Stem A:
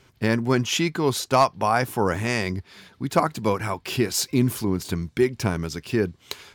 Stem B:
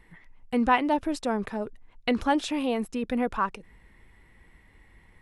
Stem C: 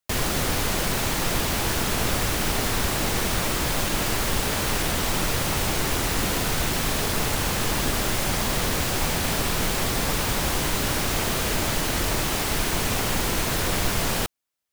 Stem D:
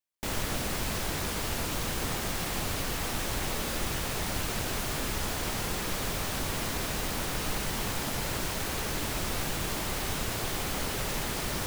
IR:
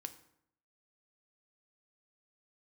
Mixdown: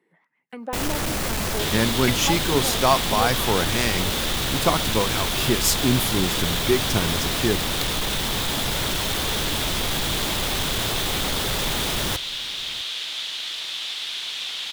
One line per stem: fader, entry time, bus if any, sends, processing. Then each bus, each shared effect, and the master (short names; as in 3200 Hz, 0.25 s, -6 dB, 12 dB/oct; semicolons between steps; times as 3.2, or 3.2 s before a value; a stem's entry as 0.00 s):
-9.0 dB, 1.50 s, no send, no echo send, high shelf 7700 Hz +9 dB
-14.5 dB, 0.00 s, send -10 dB, no echo send, compressor 4:1, threshold -30 dBFS, peak gain reduction 12 dB; steep high-pass 160 Hz; LFO bell 1.2 Hz 360–2100 Hz +15 dB
-0.5 dB, 1.50 s, no send, no echo send, band-pass 3500 Hz, Q 5
+1.0 dB, 0.50 s, no send, echo send -20.5 dB, soft clip -30 dBFS, distortion -13 dB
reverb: on, RT60 0.70 s, pre-delay 3 ms
echo: echo 0.65 s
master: AGC gain up to 8.5 dB